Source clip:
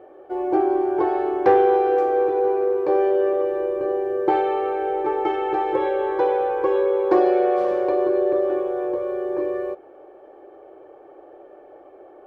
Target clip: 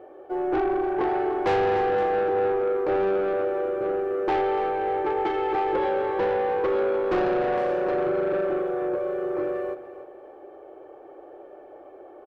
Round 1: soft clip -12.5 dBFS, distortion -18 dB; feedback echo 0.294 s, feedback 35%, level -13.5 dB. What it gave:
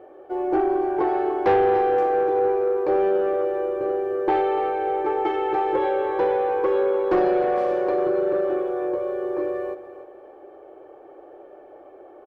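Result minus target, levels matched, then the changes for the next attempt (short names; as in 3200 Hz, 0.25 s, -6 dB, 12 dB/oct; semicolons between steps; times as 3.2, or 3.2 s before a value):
soft clip: distortion -7 dB
change: soft clip -19.5 dBFS, distortion -11 dB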